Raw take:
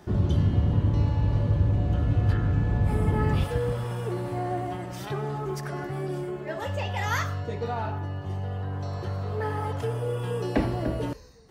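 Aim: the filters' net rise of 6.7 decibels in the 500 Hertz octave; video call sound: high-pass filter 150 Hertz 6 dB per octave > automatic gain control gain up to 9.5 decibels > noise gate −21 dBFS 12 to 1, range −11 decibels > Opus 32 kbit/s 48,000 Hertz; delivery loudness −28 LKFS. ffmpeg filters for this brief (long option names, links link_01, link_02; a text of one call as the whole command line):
ffmpeg -i in.wav -af "highpass=frequency=150:poles=1,equalizer=frequency=500:width_type=o:gain=8.5,dynaudnorm=maxgain=9.5dB,agate=range=-11dB:threshold=-21dB:ratio=12,volume=4dB" -ar 48000 -c:a libopus -b:a 32k out.opus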